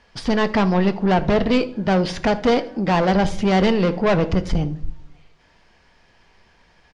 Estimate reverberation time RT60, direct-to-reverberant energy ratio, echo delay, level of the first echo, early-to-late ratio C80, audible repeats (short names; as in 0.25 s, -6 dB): 0.65 s, 10.5 dB, 79 ms, -21.5 dB, 21.0 dB, 2